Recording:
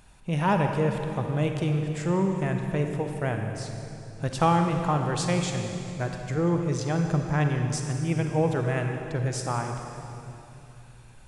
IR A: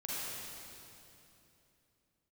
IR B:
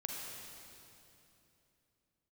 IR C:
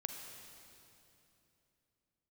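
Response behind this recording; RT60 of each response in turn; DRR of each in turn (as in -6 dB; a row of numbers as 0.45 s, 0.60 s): C; 3.0 s, 3.0 s, 3.0 s; -8.0 dB, -1.5 dB, 3.5 dB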